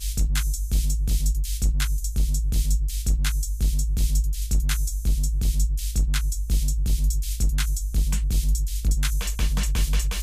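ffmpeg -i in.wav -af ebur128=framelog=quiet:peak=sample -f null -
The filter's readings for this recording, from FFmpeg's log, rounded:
Integrated loudness:
  I:         -25.5 LUFS
  Threshold: -35.5 LUFS
Loudness range:
  LRA:         0.2 LU
  Threshold: -45.5 LUFS
  LRA low:   -25.6 LUFS
  LRA high:  -25.4 LUFS
Sample peak:
  Peak:      -13.1 dBFS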